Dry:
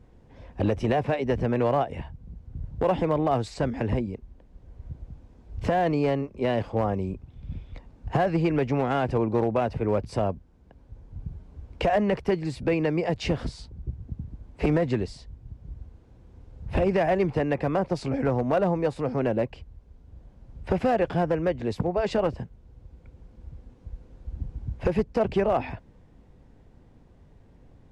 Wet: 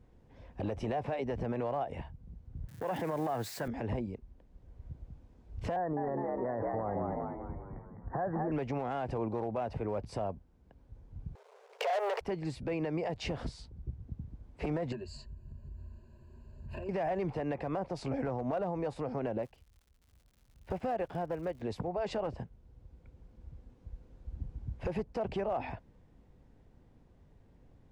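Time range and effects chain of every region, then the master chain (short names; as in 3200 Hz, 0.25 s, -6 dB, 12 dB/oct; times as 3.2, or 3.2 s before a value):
2.68–3.68 switching spikes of -33 dBFS + HPF 100 Hz 24 dB/oct + bell 1700 Hz +10.5 dB 0.54 oct
5.76–8.52 Chebyshev low-pass 1900 Hz, order 8 + frequency-shifting echo 0.205 s, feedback 52%, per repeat +67 Hz, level -6 dB
11.35–12.21 sample leveller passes 3 + brick-wall FIR high-pass 390 Hz
14.92–16.89 ripple EQ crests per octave 1.4, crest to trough 18 dB + compressor 4:1, threshold -34 dBFS
19.41–21.61 crackle 180/s -37 dBFS + upward expander, over -40 dBFS
whole clip: dynamic EQ 760 Hz, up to +6 dB, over -39 dBFS, Q 1.3; limiter -19 dBFS; gain -7 dB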